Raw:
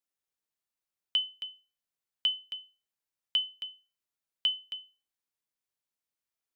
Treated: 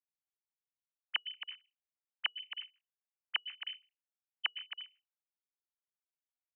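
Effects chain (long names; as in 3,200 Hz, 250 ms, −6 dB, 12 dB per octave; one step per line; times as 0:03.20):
three sine waves on the formant tracks
level −6.5 dB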